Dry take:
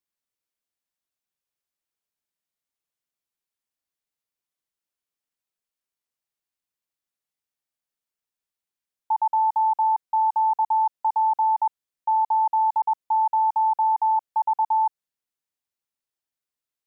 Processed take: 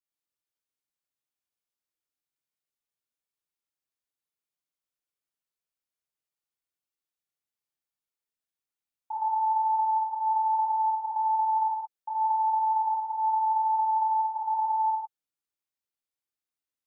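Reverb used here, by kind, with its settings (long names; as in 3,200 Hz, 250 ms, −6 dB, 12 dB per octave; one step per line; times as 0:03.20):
reverb whose tail is shaped and stops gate 200 ms flat, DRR −6 dB
level −11.5 dB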